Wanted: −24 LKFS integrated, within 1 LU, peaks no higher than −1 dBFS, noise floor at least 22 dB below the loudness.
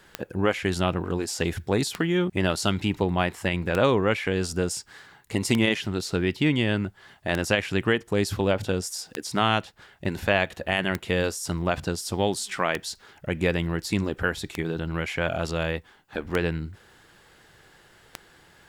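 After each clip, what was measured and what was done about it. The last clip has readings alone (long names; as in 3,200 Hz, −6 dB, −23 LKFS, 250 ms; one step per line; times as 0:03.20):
number of clicks 11; integrated loudness −26.5 LKFS; sample peak −8.0 dBFS; target loudness −24.0 LKFS
→ click removal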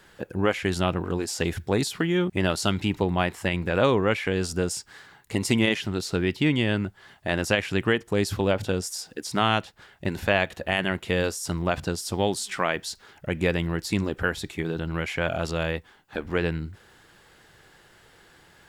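number of clicks 0; integrated loudness −26.5 LKFS; sample peak −8.0 dBFS; target loudness −24.0 LKFS
→ level +2.5 dB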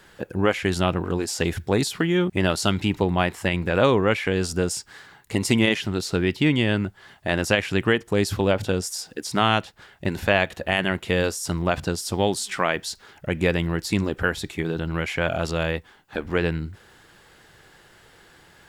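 integrated loudness −24.0 LKFS; sample peak −5.5 dBFS; background noise floor −54 dBFS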